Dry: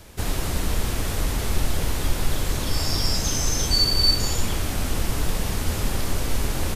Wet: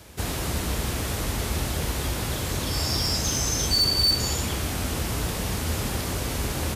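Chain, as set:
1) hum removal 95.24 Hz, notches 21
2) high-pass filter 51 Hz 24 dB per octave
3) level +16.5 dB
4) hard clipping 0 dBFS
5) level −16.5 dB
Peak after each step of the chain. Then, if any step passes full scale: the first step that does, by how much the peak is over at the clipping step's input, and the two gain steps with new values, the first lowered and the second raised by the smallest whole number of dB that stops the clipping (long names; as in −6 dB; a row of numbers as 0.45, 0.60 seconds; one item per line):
−6.5, −9.5, +7.0, 0.0, −16.5 dBFS
step 3, 7.0 dB
step 3 +9.5 dB, step 5 −9.5 dB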